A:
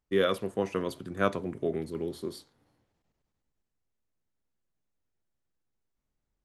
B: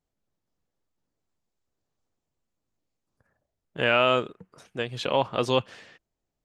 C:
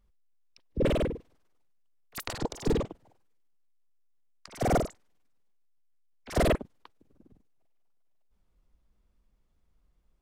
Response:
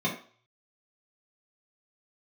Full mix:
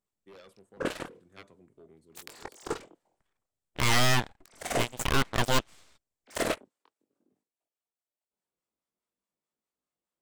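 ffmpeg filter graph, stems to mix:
-filter_complex "[0:a]adelay=150,volume=-15dB[link_01];[1:a]aeval=exprs='abs(val(0))':channel_layout=same,volume=0.5dB[link_02];[2:a]highpass=290,flanger=delay=19:depth=4.2:speed=0.52,acrossover=split=710[link_03][link_04];[link_03]aeval=exprs='val(0)*(1-0.5/2+0.5/2*cos(2*PI*4.8*n/s))':channel_layout=same[link_05];[link_04]aeval=exprs='val(0)*(1-0.5/2-0.5/2*cos(2*PI*4.8*n/s))':channel_layout=same[link_06];[link_05][link_06]amix=inputs=2:normalize=0,volume=3dB[link_07];[link_01][link_02][link_07]amix=inputs=3:normalize=0,equalizer=frequency=8000:width=2.4:gain=8.5,aeval=exprs='0.15*(cos(1*acos(clip(val(0)/0.15,-1,1)))-cos(1*PI/2))+0.0299*(cos(7*acos(clip(val(0)/0.15,-1,1)))-cos(7*PI/2))':channel_layout=same"

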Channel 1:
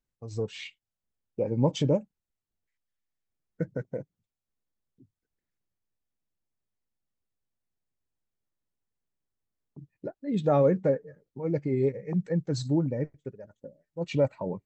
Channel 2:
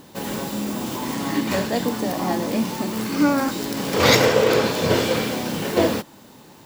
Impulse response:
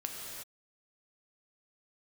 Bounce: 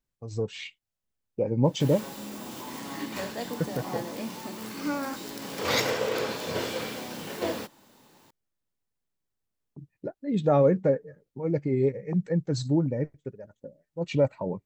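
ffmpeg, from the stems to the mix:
-filter_complex "[0:a]volume=1.5dB[link_01];[1:a]lowshelf=frequency=340:gain=-6,adelay=1650,volume=-9.5dB[link_02];[link_01][link_02]amix=inputs=2:normalize=0"

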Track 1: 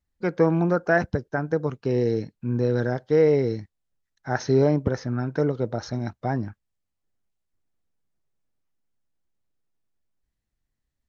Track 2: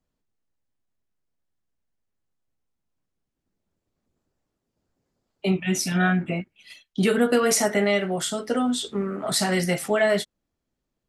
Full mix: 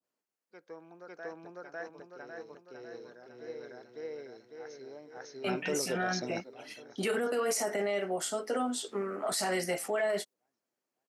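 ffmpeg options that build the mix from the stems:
ffmpeg -i stem1.wav -i stem2.wav -filter_complex "[0:a]highshelf=frequency=3600:gain=9,adelay=300,volume=-2.5dB,asplit=2[link_01][link_02];[link_02]volume=-19dB[link_03];[1:a]equalizer=frequency=3600:width=4.8:gain=-8,acontrast=27,adynamicequalizer=threshold=0.02:dfrequency=1900:dqfactor=0.7:tfrequency=1900:tqfactor=0.7:attack=5:release=100:ratio=0.375:range=2:mode=cutabove:tftype=highshelf,volume=-7dB,asplit=2[link_04][link_05];[link_05]apad=whole_len=501992[link_06];[link_01][link_06]sidechaingate=range=-23dB:threshold=-43dB:ratio=16:detection=peak[link_07];[link_03]aecho=0:1:551|1102|1653|2204|2755|3306|3857|4408:1|0.52|0.27|0.141|0.0731|0.038|0.0198|0.0103[link_08];[link_07][link_04][link_08]amix=inputs=3:normalize=0,highpass=400,adynamicequalizer=threshold=0.00891:dfrequency=1500:dqfactor=0.74:tfrequency=1500:tqfactor=0.74:attack=5:release=100:ratio=0.375:range=3:mode=cutabove:tftype=bell,alimiter=limit=-23dB:level=0:latency=1:release=14" out.wav

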